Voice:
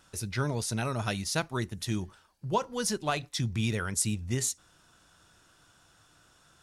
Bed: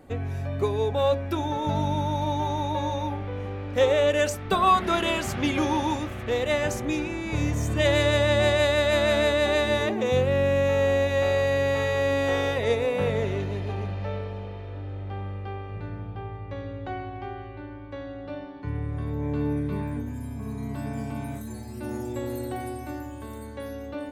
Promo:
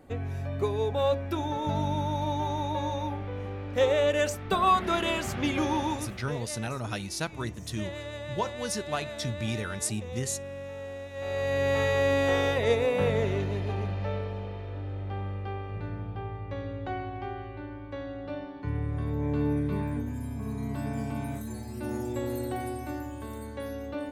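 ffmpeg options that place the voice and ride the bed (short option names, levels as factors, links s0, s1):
-filter_complex "[0:a]adelay=5850,volume=0.75[s0];[1:a]volume=4.73,afade=t=out:st=5.83:d=0.64:silence=0.199526,afade=t=in:st=11.13:d=0.67:silence=0.149624[s1];[s0][s1]amix=inputs=2:normalize=0"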